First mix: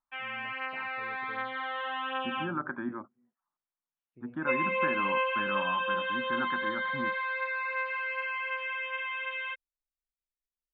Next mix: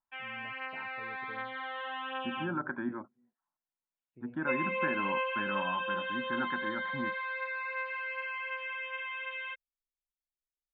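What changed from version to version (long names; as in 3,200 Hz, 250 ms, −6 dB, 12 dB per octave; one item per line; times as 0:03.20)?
background −3.5 dB
master: add notch filter 1,200 Hz, Q 7.2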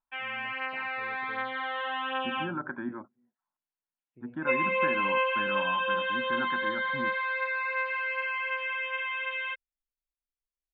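background +6.0 dB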